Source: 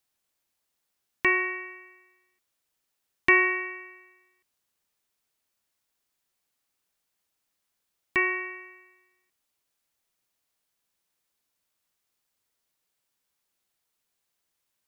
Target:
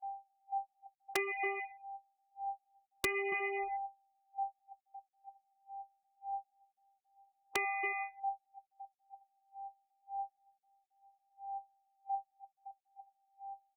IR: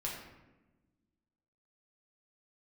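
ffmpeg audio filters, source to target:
-filter_complex "[0:a]aeval=exprs='val(0)+0.0178*sin(2*PI*730*n/s)':channel_layout=same,flanger=delay=18:depth=6.4:speed=0.24,afftfilt=real='re*gte(hypot(re,im),0.0708)':imag='im*gte(hypot(re,im),0.0708)':win_size=1024:overlap=0.75,aecho=1:1:5.8:0.77,aecho=1:1:302:0.376,agate=range=-40dB:threshold=-37dB:ratio=16:detection=peak,asetrate=47628,aresample=44100,acrossover=split=100[link_01][link_02];[link_01]aeval=exprs='0.0075*sin(PI/2*7.94*val(0)/0.0075)':channel_layout=same[link_03];[link_02]bandpass=frequency=680:width_type=q:width=1.3:csg=0[link_04];[link_03][link_04]amix=inputs=2:normalize=0,acompressor=threshold=-42dB:ratio=10,aeval=exprs='(mod(42.2*val(0)+1,2)-1)/42.2':channel_layout=same,volume=10dB" -ar 48000 -c:a libopus -b:a 48k

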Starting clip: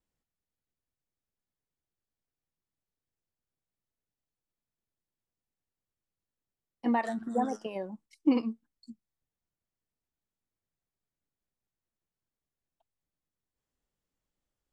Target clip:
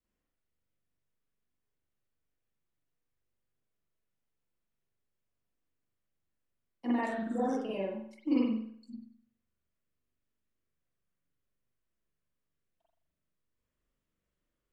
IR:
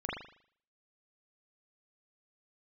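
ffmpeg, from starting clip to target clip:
-filter_complex "[0:a]asetnsamples=nb_out_samples=441:pad=0,asendcmd='8.91 equalizer g -12',equalizer=frequency=820:width=5.3:gain=-6,acrossover=split=160|3000[link_01][link_02][link_03];[link_02]acompressor=threshold=-36dB:ratio=2[link_04];[link_01][link_04][link_03]amix=inputs=3:normalize=0[link_05];[1:a]atrim=start_sample=2205,asetrate=41895,aresample=44100[link_06];[link_05][link_06]afir=irnorm=-1:irlink=0,volume=-1.5dB"

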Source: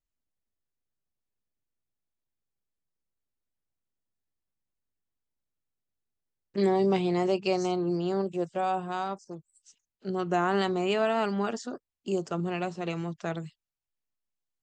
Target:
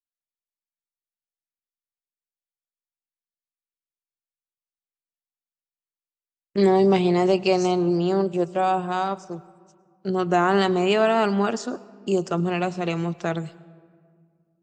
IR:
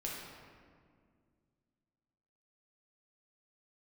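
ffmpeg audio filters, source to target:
-filter_complex "[0:a]agate=range=-33dB:threshold=-46dB:ratio=3:detection=peak,acontrast=81,asplit=2[link_01][link_02];[1:a]atrim=start_sample=2205,adelay=106[link_03];[link_02][link_03]afir=irnorm=-1:irlink=0,volume=-21dB[link_04];[link_01][link_04]amix=inputs=2:normalize=0"

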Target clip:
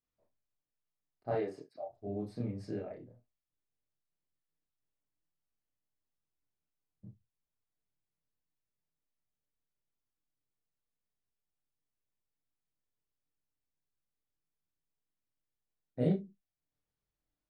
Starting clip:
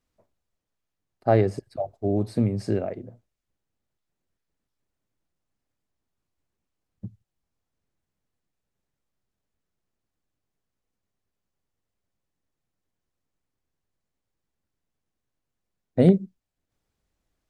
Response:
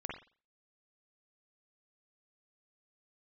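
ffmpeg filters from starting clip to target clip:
-filter_complex "[0:a]asettb=1/sr,asplit=3[link_01][link_02][link_03];[link_01]atrim=end=1.324[link_04];[link_02]atrim=start=1.32:end=1.9,asetpts=PTS-STARTPTS,afade=type=in:duration=0.004:curve=qsin,afade=type=out:start_time=0.576:duration=0.004:curve=qsin,highpass=270[link_05];[link_03]atrim=start=1.896[link_06];[link_04][link_05]acrossfade=duration=0.004:curve1=hsin:curve2=qsin[link_07];[link_07][link_06]acrossfade=duration=0.004:curve1=qsin:curve2=hsin[link_08];[1:a]atrim=start_sample=2205,afade=type=out:start_time=0.22:duration=0.01,atrim=end_sample=10143,asetrate=79380,aresample=44100[link_09];[link_08][link_09]afir=irnorm=-1:irlink=0,volume=-8dB"

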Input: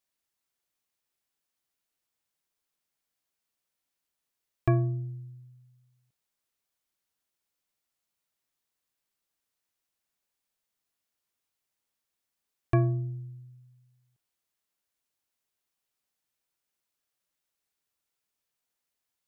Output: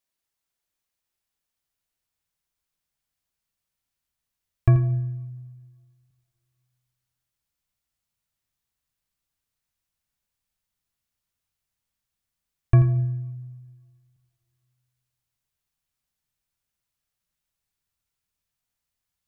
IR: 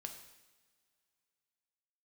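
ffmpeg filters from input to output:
-filter_complex "[0:a]asubboost=boost=5:cutoff=150,asplit=2[link_01][link_02];[1:a]atrim=start_sample=2205,adelay=85[link_03];[link_02][link_03]afir=irnorm=-1:irlink=0,volume=-7.5dB[link_04];[link_01][link_04]amix=inputs=2:normalize=0"

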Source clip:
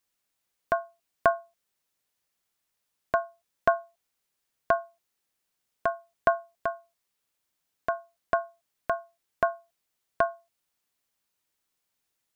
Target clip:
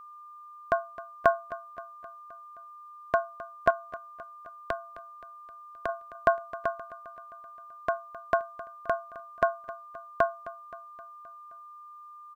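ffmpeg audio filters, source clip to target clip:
ffmpeg -i in.wav -filter_complex "[0:a]asettb=1/sr,asplit=3[link_01][link_02][link_03];[link_01]atrim=end=3.704[link_04];[link_02]atrim=start=3.7:end=5.89,asetpts=PTS-STARTPTS,afade=type=in:duration=0.004:curve=qsin,afade=type=out:start_time=2.186:duration=0.004:curve=qsin,acrossover=split=130|3000[link_05][link_06][link_07];[link_06]acompressor=threshold=-30dB:ratio=6[link_08];[link_05][link_08][link_07]amix=inputs=3:normalize=0[link_09];[link_03]atrim=start=5.886[link_10];[link_04][link_09]acrossfade=duration=0.004:curve1=hsin:curve2=qsin[link_11];[link_11][link_10]acrossfade=duration=0.004:curve1=qsin:curve2=hsin,aecho=1:1:262|524|786|1048|1310:0.141|0.0819|0.0475|0.0276|0.016,aeval=exprs='val(0)+0.00562*sin(2*PI*1200*n/s)':channel_layout=same" out.wav

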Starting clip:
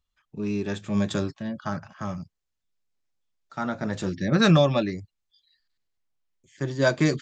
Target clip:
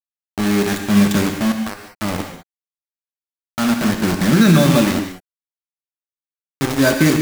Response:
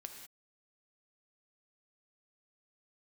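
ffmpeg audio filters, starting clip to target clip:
-filter_complex "[0:a]equalizer=frequency=125:width_type=o:width=1:gain=-4,equalizer=frequency=250:width_type=o:width=1:gain=6,equalizer=frequency=500:width_type=o:width=1:gain=-7,equalizer=frequency=1000:width_type=o:width=1:gain=-4,equalizer=frequency=4000:width_type=o:width=1:gain=-4,asettb=1/sr,asplit=3[link_01][link_02][link_03];[link_01]atrim=end=1.514[link_04];[link_02]atrim=start=1.51:end=1.93,asetpts=PTS-STARTPTS,afade=type=in:duration=0.004:curve=qsin,afade=type=out:start_time=0.416:duration=0.004:curve=qsin,acompressor=threshold=-35dB:ratio=5[link_05];[link_03]atrim=start=1.926[link_06];[link_04][link_05]acrossfade=duration=0.004:curve1=hsin:curve2=qsin[link_07];[link_07][link_06]acrossfade=duration=0.004:curve1=qsin:curve2=hsin,acrusher=bits=4:mix=0:aa=0.000001[link_08];[1:a]atrim=start_sample=2205[link_09];[link_08][link_09]afir=irnorm=-1:irlink=0,alimiter=level_in=16.5dB:limit=-1dB:release=50:level=0:latency=1,volume=-2dB"

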